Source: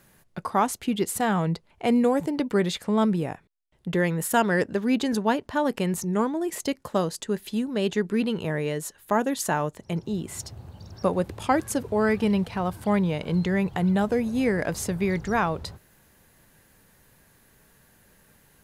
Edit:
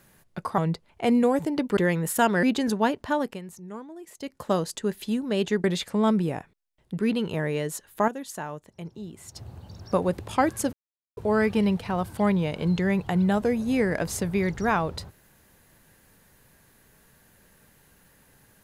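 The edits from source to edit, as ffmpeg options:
-filter_complex "[0:a]asplit=11[s0][s1][s2][s3][s4][s5][s6][s7][s8][s9][s10];[s0]atrim=end=0.582[s11];[s1]atrim=start=1.388:end=2.582[s12];[s2]atrim=start=3.918:end=4.582[s13];[s3]atrim=start=4.878:end=5.86,asetpts=PTS-STARTPTS,afade=t=out:st=0.692:d=0.29:silence=0.188365[s14];[s4]atrim=start=5.86:end=6.63,asetpts=PTS-STARTPTS,volume=0.188[s15];[s5]atrim=start=6.63:end=8.092,asetpts=PTS-STARTPTS,afade=t=in:d=0.29:silence=0.188365[s16];[s6]atrim=start=2.578:end=3.922[s17];[s7]atrim=start=8.088:end=9.192[s18];[s8]atrim=start=9.188:end=10.472,asetpts=PTS-STARTPTS,volume=0.335[s19];[s9]atrim=start=10.468:end=11.84,asetpts=PTS-STARTPTS,afade=t=out:st=1.368:d=0.004:c=hsin,apad=pad_dur=0.44[s20];[s10]atrim=start=11.84,asetpts=PTS-STARTPTS,afade=t=in:d=0.004:c=hsin[s21];[s11][s12]acrossfade=d=0.004:c1=hsin:c2=hsin[s22];[s22][s13]acrossfade=d=0.004:c1=hsin:c2=hsin[s23];[s14][s15][s16]concat=n=3:v=0:a=1[s24];[s23][s24]acrossfade=d=0.004:c1=hsin:c2=hsin[s25];[s25][s17]acrossfade=d=0.004:c1=hsin:c2=hsin[s26];[s26][s18]acrossfade=d=0.004:c1=hsin:c2=hsin[s27];[s27][s19]acrossfade=d=0.004:c1=hsin:c2=hsin[s28];[s20][s21]concat=n=2:v=0:a=1[s29];[s28][s29]acrossfade=d=0.004:c1=hsin:c2=hsin"

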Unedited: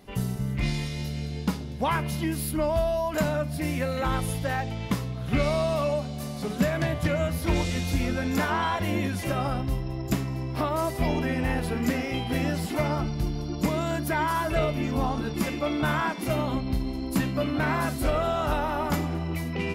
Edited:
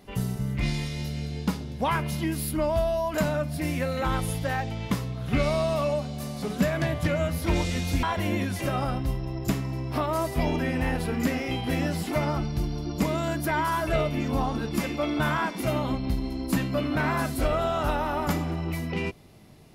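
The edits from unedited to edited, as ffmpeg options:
-filter_complex "[0:a]asplit=2[s0][s1];[s0]atrim=end=8.032[s2];[s1]atrim=start=8.658[s3];[s2][s3]acrossfade=d=0.004:c1=hsin:c2=hsin"

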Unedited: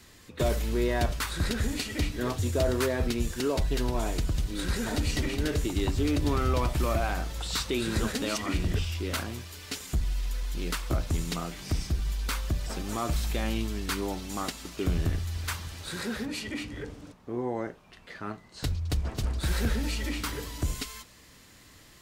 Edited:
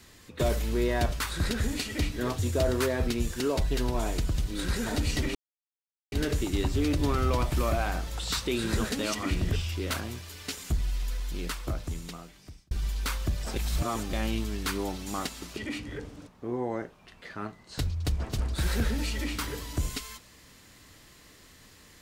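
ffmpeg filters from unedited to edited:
-filter_complex "[0:a]asplit=6[s0][s1][s2][s3][s4][s5];[s0]atrim=end=5.35,asetpts=PTS-STARTPTS,afade=t=out:st=5.346:d=0.004:c=hsin,apad=pad_dur=0.77[s6];[s1]atrim=start=5.35:end=11.94,asetpts=PTS-STARTPTS,afade=t=in:d=0.004:c=hsin,afade=t=out:st=4.98:d=1.61[s7];[s2]atrim=start=11.94:end=12.792,asetpts=PTS-STARTPTS,afade=t=in:d=0.004:c=hsin[s8];[s3]atrim=start=12.788:end=13.362,asetpts=PTS-STARTPTS,areverse[s9];[s4]atrim=start=13.358:end=14.802[s10];[s5]atrim=start=16.418[s11];[s6][s7][s8]concat=n=3:v=0:a=1[s12];[s12][s9]acrossfade=d=0.004:c1=hsin:c2=hsin[s13];[s13][s10]acrossfade=d=0.004:c1=hsin:c2=hsin[s14];[s14][s11]acrossfade=d=0.004:c1=hsin:c2=hsin"

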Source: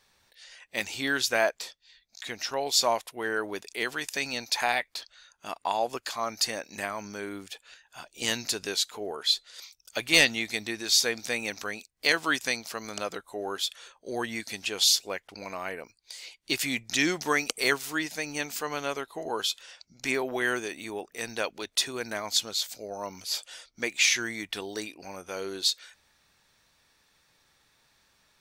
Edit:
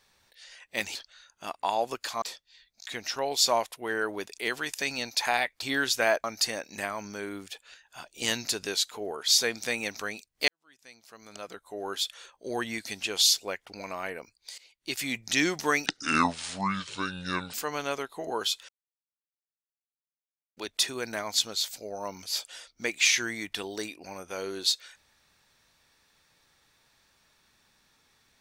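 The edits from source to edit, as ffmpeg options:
-filter_complex "[0:a]asplit=12[s0][s1][s2][s3][s4][s5][s6][s7][s8][s9][s10][s11];[s0]atrim=end=0.952[s12];[s1]atrim=start=4.968:end=6.242[s13];[s2]atrim=start=1.568:end=4.972[s14];[s3]atrim=start=0.948:end=1.572[s15];[s4]atrim=start=6.238:end=9.282[s16];[s5]atrim=start=10.898:end=12.1,asetpts=PTS-STARTPTS,afade=t=out:st=1.198:d=0.004:c=hsin[s17];[s6]atrim=start=12.1:end=16.2,asetpts=PTS-STARTPTS,afade=t=in:d=1.51:c=qua,afade=t=out:st=4.096:d=0.004:c=hsin:silence=0.141254[s18];[s7]atrim=start=16.2:end=17.484,asetpts=PTS-STARTPTS,afade=t=in:d=0.68:silence=0.141254[s19];[s8]atrim=start=17.48:end=18.52,asetpts=PTS-STARTPTS,asetrate=27342,aresample=44100,atrim=end_sample=73974,asetpts=PTS-STARTPTS[s20];[s9]atrim=start=18.516:end=19.67,asetpts=PTS-STARTPTS,afade=t=out:st=1.15:d=0.004:c=hsin[s21];[s10]atrim=start=19.67:end=21.55,asetpts=PTS-STARTPTS,volume=0[s22];[s11]atrim=start=21.55,asetpts=PTS-STARTPTS,afade=t=in:d=0.004:c=hsin[s23];[s12][s13]acrossfade=d=0.004:c1=hsin:c2=hsin[s24];[s24][s14]acrossfade=d=0.004:c1=hsin:c2=hsin[s25];[s25][s15]acrossfade=d=0.004:c1=hsin:c2=hsin[s26];[s26][s16]acrossfade=d=0.004:c1=hsin:c2=hsin[s27];[s17][s18][s19]concat=n=3:v=0:a=1[s28];[s27][s28]acrossfade=d=0.004:c1=hsin:c2=hsin[s29];[s29][s20]acrossfade=d=0.004:c1=hsin:c2=hsin[s30];[s21][s22][s23]concat=n=3:v=0:a=1[s31];[s30][s31]acrossfade=d=0.004:c1=hsin:c2=hsin"

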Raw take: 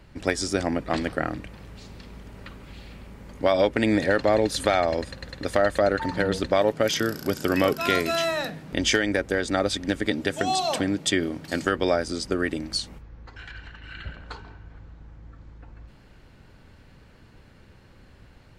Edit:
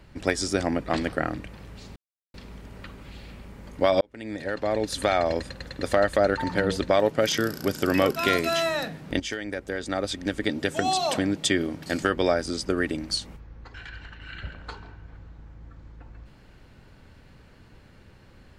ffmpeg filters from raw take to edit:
-filter_complex "[0:a]asplit=4[s0][s1][s2][s3];[s0]atrim=end=1.96,asetpts=PTS-STARTPTS,afade=t=out:st=1.956:d=0.004:c=hsin,apad=pad_dur=0.38[s4];[s1]atrim=start=1.96:end=3.63,asetpts=PTS-STARTPTS,afade=t=in:d=0.004:c=hsin,afade=t=out:st=1.666:d=0.004:c=hsin[s5];[s2]atrim=start=3.63:end=8.82,asetpts=PTS-STARTPTS,afade=t=in:d=1.29,afade=t=out:st=5.186:d=0.004:c=hsin:silence=0.237137[s6];[s3]atrim=start=8.82,asetpts=PTS-STARTPTS,afade=t=in:d=1.61:silence=0.237137[s7];[s4][s5][s6][s7]concat=n=4:v=0:a=1"

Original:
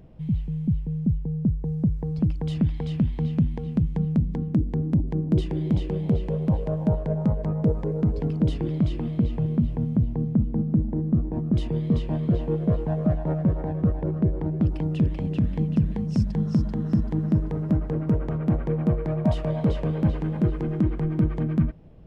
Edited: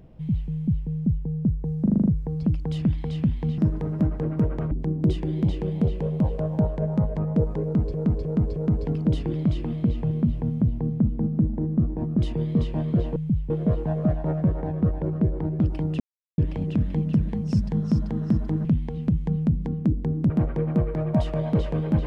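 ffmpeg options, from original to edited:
-filter_complex "[0:a]asplit=17[s0][s1][s2][s3][s4][s5][s6][s7][s8][s9][s10][s11][s12][s13][s14][s15][s16];[s0]atrim=end=1.862[s17];[s1]atrim=start=1.818:end=1.862[s18];[s2]atrim=start=1.818:end=1.862[s19];[s3]atrim=start=1.818:end=1.862[s20];[s4]atrim=start=1.818:end=1.862[s21];[s5]atrim=start=1.818:end=1.862[s22];[s6]atrim=start=1.818:end=3.342[s23];[s7]atrim=start=17.278:end=18.412[s24];[s8]atrim=start=4.988:end=8.222[s25];[s9]atrim=start=7.908:end=8.222[s26];[s10]atrim=start=7.908:end=8.222[s27];[s11]atrim=start=7.908:end=12.512[s28];[s12]atrim=start=0.538:end=0.882[s29];[s13]atrim=start=12.508:end=15.01,asetpts=PTS-STARTPTS,afade=t=out:st=2.498:d=0.004:c=hsin,apad=pad_dur=0.38[s30];[s14]atrim=start=15.01:end=17.282,asetpts=PTS-STARTPTS,afade=t=in:d=0.004:c=hsin[s31];[s15]atrim=start=3.338:end=4.992[s32];[s16]atrim=start=18.408[s33];[s17][s18]acrossfade=d=0.004:c1=hsin:c2=hsin[s34];[s34][s19]acrossfade=d=0.004:c1=hsin:c2=hsin[s35];[s35][s20]acrossfade=d=0.004:c1=hsin:c2=hsin[s36];[s36][s21]acrossfade=d=0.004:c1=hsin:c2=hsin[s37];[s37][s22]acrossfade=d=0.004:c1=hsin:c2=hsin[s38];[s38][s23]acrossfade=d=0.004:c1=hsin:c2=hsin[s39];[s39][s24]acrossfade=d=0.004:c1=hsin:c2=hsin[s40];[s40][s25]acrossfade=d=0.004:c1=hsin:c2=hsin[s41];[s41][s26]acrossfade=d=0.004:c1=hsin:c2=hsin[s42];[s42][s27]acrossfade=d=0.004:c1=hsin:c2=hsin[s43];[s43][s28]acrossfade=d=0.004:c1=hsin:c2=hsin[s44];[s44][s29]acrossfade=d=0.004:c1=hsin:c2=hsin[s45];[s30][s31]concat=n=2:v=0:a=1[s46];[s45][s46]acrossfade=d=0.004:c1=hsin:c2=hsin[s47];[s47][s32]acrossfade=d=0.004:c1=hsin:c2=hsin[s48];[s48][s33]acrossfade=d=0.004:c1=hsin:c2=hsin"

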